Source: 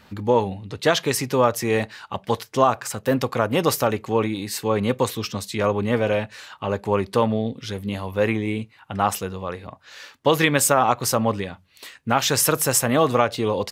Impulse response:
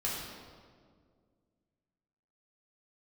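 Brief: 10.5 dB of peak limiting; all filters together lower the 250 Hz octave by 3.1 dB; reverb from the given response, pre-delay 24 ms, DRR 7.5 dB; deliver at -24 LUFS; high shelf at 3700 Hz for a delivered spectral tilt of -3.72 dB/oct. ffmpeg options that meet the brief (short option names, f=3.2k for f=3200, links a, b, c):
-filter_complex "[0:a]equalizer=f=250:t=o:g=-4,highshelf=f=3.7k:g=7.5,alimiter=limit=-9.5dB:level=0:latency=1,asplit=2[a][b];[1:a]atrim=start_sample=2205,adelay=24[c];[b][c]afir=irnorm=-1:irlink=0,volume=-13dB[d];[a][d]amix=inputs=2:normalize=0,volume=-1.5dB"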